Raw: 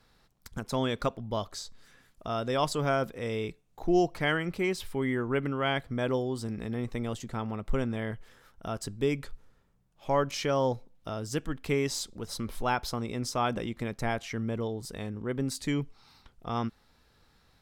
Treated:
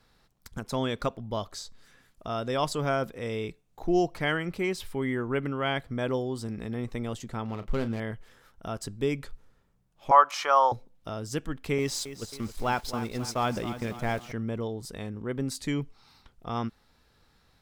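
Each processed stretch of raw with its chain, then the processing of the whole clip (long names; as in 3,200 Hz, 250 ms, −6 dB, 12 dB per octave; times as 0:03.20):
0:07.45–0:08.00: running median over 15 samples + parametric band 3,200 Hz +5.5 dB 1.3 octaves + double-tracking delay 35 ms −11 dB
0:10.11–0:10.72: high-pass with resonance 760 Hz, resonance Q 2.1 + parametric band 1,200 Hz +12.5 dB 0.74 octaves
0:11.78–0:14.32: converter with a step at zero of −41 dBFS + noise gate −35 dBFS, range −11 dB + feedback echo at a low word length 269 ms, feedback 55%, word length 8 bits, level −11.5 dB
whole clip: no processing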